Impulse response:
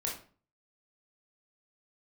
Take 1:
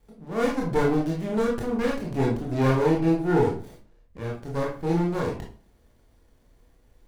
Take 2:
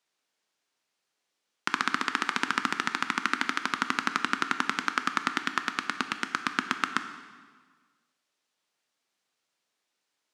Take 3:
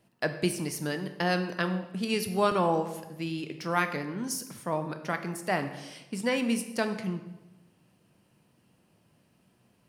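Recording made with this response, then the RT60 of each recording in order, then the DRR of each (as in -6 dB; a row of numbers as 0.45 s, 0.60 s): 1; 0.40 s, 1.6 s, 1.0 s; -3.0 dB, 8.0 dB, 7.5 dB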